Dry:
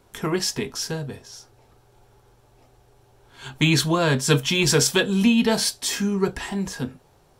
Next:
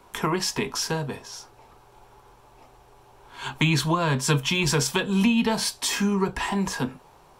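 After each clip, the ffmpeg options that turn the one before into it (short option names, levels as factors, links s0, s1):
-filter_complex "[0:a]equalizer=f=100:t=o:w=0.67:g=-7,equalizer=f=1000:t=o:w=0.67:g=10,equalizer=f=2500:t=o:w=0.67:g=4,acrossover=split=180[s0][s1];[s1]acompressor=threshold=0.0562:ratio=4[s2];[s0][s2]amix=inputs=2:normalize=0,volume=1.26"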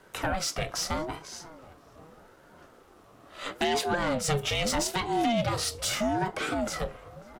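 -filter_complex "[0:a]asoftclip=type=tanh:threshold=0.133,asplit=2[s0][s1];[s1]adelay=543,lowpass=f=1300:p=1,volume=0.141,asplit=2[s2][s3];[s3]adelay=543,lowpass=f=1300:p=1,volume=0.54,asplit=2[s4][s5];[s5]adelay=543,lowpass=f=1300:p=1,volume=0.54,asplit=2[s6][s7];[s7]adelay=543,lowpass=f=1300:p=1,volume=0.54,asplit=2[s8][s9];[s9]adelay=543,lowpass=f=1300:p=1,volume=0.54[s10];[s0][s2][s4][s6][s8][s10]amix=inputs=6:normalize=0,aeval=exprs='val(0)*sin(2*PI*420*n/s+420*0.35/0.79*sin(2*PI*0.79*n/s))':c=same"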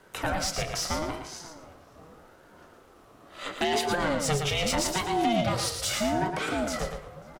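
-af "aecho=1:1:114|228|342:0.501|0.115|0.0265"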